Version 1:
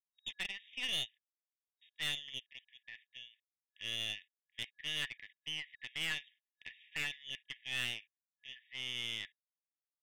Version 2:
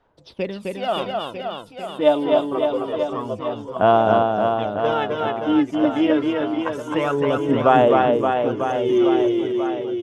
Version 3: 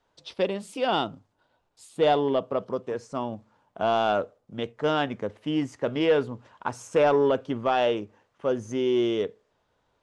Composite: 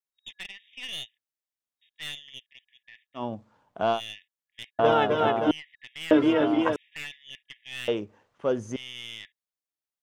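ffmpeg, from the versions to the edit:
-filter_complex "[2:a]asplit=2[a][b];[1:a]asplit=2[c][d];[0:a]asplit=5[e][f][g][h][i];[e]atrim=end=3.24[j];[a]atrim=start=3.14:end=4.01[k];[f]atrim=start=3.91:end=4.792[l];[c]atrim=start=4.788:end=5.512[m];[g]atrim=start=5.508:end=6.112[n];[d]atrim=start=6.108:end=6.762[o];[h]atrim=start=6.758:end=7.882[p];[b]atrim=start=7.878:end=8.762[q];[i]atrim=start=8.758[r];[j][k]acrossfade=d=0.1:c1=tri:c2=tri[s];[s][l]acrossfade=d=0.1:c1=tri:c2=tri[t];[t][m]acrossfade=d=0.004:c1=hsin:c2=hsin[u];[u][n]acrossfade=d=0.004:c1=hsin:c2=hsin[v];[v][o]acrossfade=d=0.004:c1=hsin:c2=hsin[w];[w][p]acrossfade=d=0.004:c1=hsin:c2=hsin[x];[x][q]acrossfade=d=0.004:c1=hsin:c2=hsin[y];[y][r]acrossfade=d=0.004:c1=hsin:c2=hsin"

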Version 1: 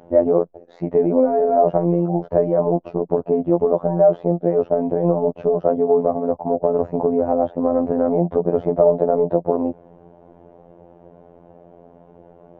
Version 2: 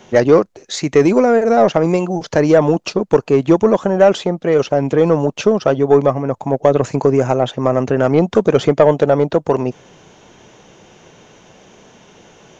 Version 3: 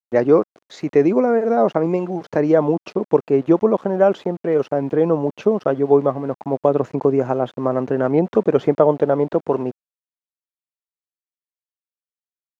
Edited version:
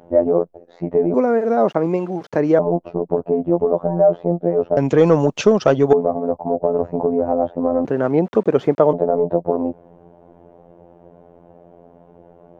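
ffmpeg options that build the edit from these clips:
-filter_complex "[2:a]asplit=2[a][b];[0:a]asplit=4[c][d][e][f];[c]atrim=end=1.142[g];[a]atrim=start=1.138:end=2.592[h];[d]atrim=start=2.588:end=4.772[i];[1:a]atrim=start=4.768:end=5.932[j];[e]atrim=start=5.928:end=7.852[k];[b]atrim=start=7.848:end=8.932[l];[f]atrim=start=8.928[m];[g][h]acrossfade=d=0.004:c1=hsin:c2=hsin[n];[n][i]acrossfade=d=0.004:c1=hsin:c2=hsin[o];[o][j]acrossfade=d=0.004:c1=hsin:c2=hsin[p];[p][k]acrossfade=d=0.004:c1=hsin:c2=hsin[q];[q][l]acrossfade=d=0.004:c1=hsin:c2=hsin[r];[r][m]acrossfade=d=0.004:c1=hsin:c2=hsin"

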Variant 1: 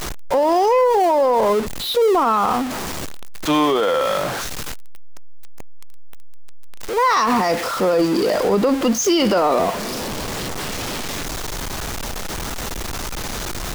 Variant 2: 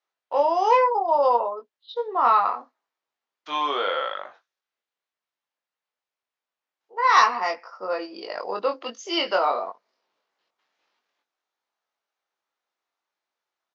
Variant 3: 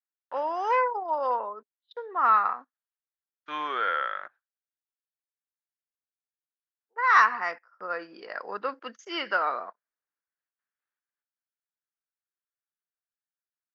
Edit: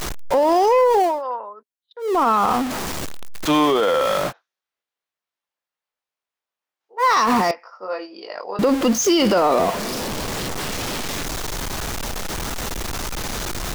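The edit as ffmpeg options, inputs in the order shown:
-filter_complex "[1:a]asplit=2[a][b];[0:a]asplit=4[c][d][e][f];[c]atrim=end=1.24[g];[2:a]atrim=start=1:end=2.22[h];[d]atrim=start=1.98:end=4.33[i];[a]atrim=start=4.27:end=7.04[j];[e]atrim=start=6.98:end=7.512[k];[b]atrim=start=7.508:end=8.592[l];[f]atrim=start=8.588[m];[g][h]acrossfade=d=0.24:c1=tri:c2=tri[n];[n][i]acrossfade=d=0.24:c1=tri:c2=tri[o];[o][j]acrossfade=d=0.06:c1=tri:c2=tri[p];[p][k]acrossfade=d=0.06:c1=tri:c2=tri[q];[q][l]acrossfade=d=0.004:c1=hsin:c2=hsin[r];[r][m]acrossfade=d=0.004:c1=hsin:c2=hsin"

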